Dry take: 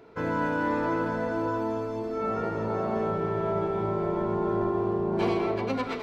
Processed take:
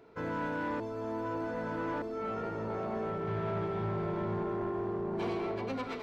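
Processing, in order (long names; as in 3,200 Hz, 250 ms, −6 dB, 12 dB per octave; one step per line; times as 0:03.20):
0:03.27–0:04.43: octave-band graphic EQ 125/2,000/4,000 Hz +9/+4/+5 dB
soft clipping −22.5 dBFS, distortion −16 dB
0:00.80–0:02.02: reverse
level −5.5 dB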